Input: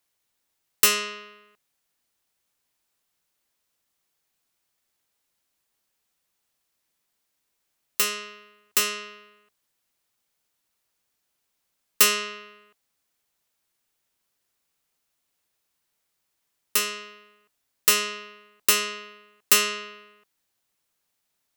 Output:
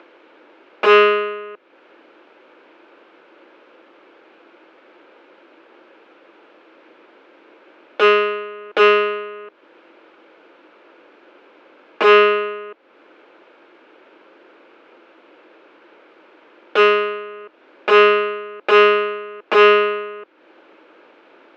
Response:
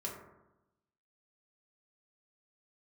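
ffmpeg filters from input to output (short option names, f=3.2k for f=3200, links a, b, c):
-af "aeval=exprs='0.708*sin(PI/2*7.94*val(0)/0.708)':c=same,acompressor=mode=upward:threshold=-26dB:ratio=2.5,highpass=f=300:w=0.5412,highpass=f=300:w=1.3066,equalizer=f=330:t=q:w=4:g=9,equalizer=f=520:t=q:w=4:g=5,equalizer=f=740:t=q:w=4:g=-6,equalizer=f=1.1k:t=q:w=4:g=-5,equalizer=f=1.9k:t=q:w=4:g=-10,lowpass=f=2.1k:w=0.5412,lowpass=f=2.1k:w=1.3066,volume=3dB"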